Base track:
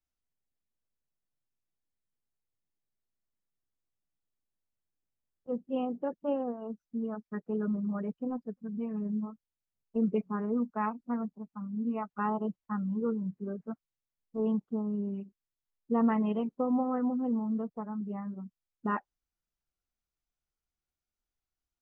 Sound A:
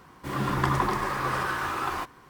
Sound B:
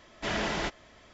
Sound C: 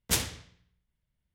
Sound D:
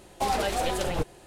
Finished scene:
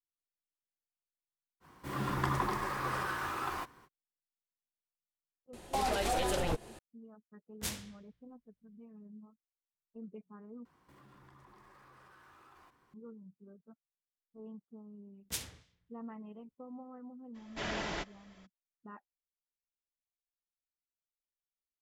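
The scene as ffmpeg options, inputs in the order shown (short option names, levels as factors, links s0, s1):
-filter_complex "[1:a]asplit=2[s0][s1];[3:a]asplit=2[s2][s3];[0:a]volume=0.112[s4];[s0]highshelf=f=9300:g=3.5[s5];[4:a]alimiter=limit=0.0841:level=0:latency=1:release=106[s6];[s2]flanger=delay=18.5:depth=4.7:speed=3[s7];[s1]acompressor=threshold=0.00794:ratio=6:attack=4.6:release=68:knee=1:detection=peak[s8];[s3]acrossover=split=2100[s9][s10];[s9]aeval=exprs='val(0)*(1-0.5/2+0.5/2*cos(2*PI*3.2*n/s))':c=same[s11];[s10]aeval=exprs='val(0)*(1-0.5/2-0.5/2*cos(2*PI*3.2*n/s))':c=same[s12];[s11][s12]amix=inputs=2:normalize=0[s13];[s4]asplit=2[s14][s15];[s14]atrim=end=10.654[s16];[s8]atrim=end=2.29,asetpts=PTS-STARTPTS,volume=0.133[s17];[s15]atrim=start=12.936[s18];[s5]atrim=end=2.29,asetpts=PTS-STARTPTS,volume=0.422,afade=t=in:d=0.05,afade=t=out:st=2.24:d=0.05,adelay=1600[s19];[s6]atrim=end=1.26,asetpts=PTS-STARTPTS,volume=0.891,afade=t=in:d=0.004:c=hsin,afade=t=out:st=1.256:d=0.004:c=hsin,adelay=243873S[s20];[s7]atrim=end=1.34,asetpts=PTS-STARTPTS,volume=0.398,afade=t=in:d=0.004:c=hsin,afade=t=out:st=1.336:d=0.004:c=hsin,adelay=7520[s21];[s13]atrim=end=1.34,asetpts=PTS-STARTPTS,volume=0.299,afade=t=in:d=0.004:c=hsin,afade=t=out:st=1.336:d=0.004:c=hsin,adelay=15210[s22];[2:a]atrim=end=1.13,asetpts=PTS-STARTPTS,volume=0.473,afade=t=in:d=0.02,afade=t=out:st=1.11:d=0.02,adelay=17340[s23];[s16][s17]acrossfade=d=0.004:c1=hsin:c2=hsin[s24];[s24][s18]acrossfade=d=0.004:c1=hsin:c2=hsin[s25];[s25][s19][s20][s21][s22][s23]amix=inputs=6:normalize=0"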